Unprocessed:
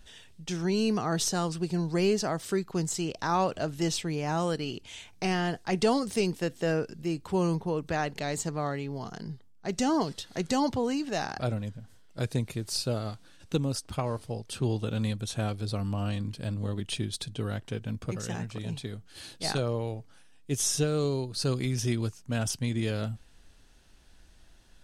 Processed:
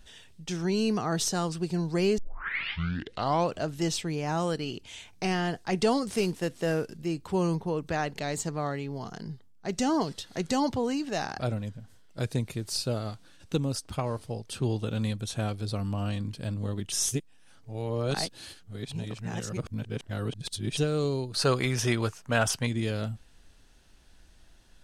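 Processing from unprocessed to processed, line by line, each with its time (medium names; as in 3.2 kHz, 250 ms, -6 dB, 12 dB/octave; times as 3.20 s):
2.18 s: tape start 1.35 s
6.08–6.97 s: CVSD coder 64 kbps
16.92–20.77 s: reverse
21.34–22.67 s: FFT filter 290 Hz 0 dB, 480 Hz +8 dB, 1.3 kHz +13 dB, 5.2 kHz +3 dB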